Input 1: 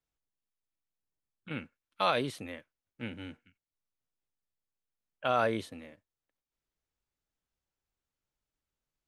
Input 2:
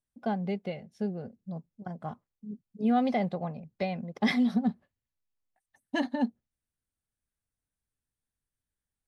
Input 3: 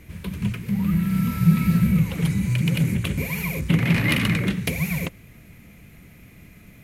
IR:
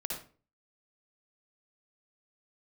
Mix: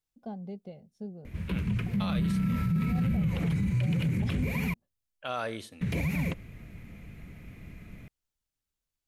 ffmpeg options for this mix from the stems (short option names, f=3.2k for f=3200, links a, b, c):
-filter_complex "[0:a]highshelf=f=2.4k:g=9,volume=-6.5dB,asplit=2[a][b];[b]volume=-21dB[c];[1:a]equalizer=f=1.9k:w=0.76:g=-13,acontrast=35,volume=-13.5dB[d];[2:a]lowpass=f=2.9k:p=1,adelay=1250,volume=-1dB,asplit=3[e][f][g];[e]atrim=end=4.74,asetpts=PTS-STARTPTS,afade=t=out:st=4.736:d=0.004:c=hsin[h];[f]atrim=start=4.74:end=5.81,asetpts=PTS-STARTPTS,volume=0[i];[g]atrim=start=5.81,asetpts=PTS-STARTPTS,afade=t=in:d=0.004:c=hsin[j];[h][i][j]concat=n=3:v=0:a=1[k];[3:a]atrim=start_sample=2205[l];[c][l]afir=irnorm=-1:irlink=0[m];[a][d][k][m]amix=inputs=4:normalize=0,lowshelf=f=65:g=8,alimiter=limit=-21.5dB:level=0:latency=1:release=45"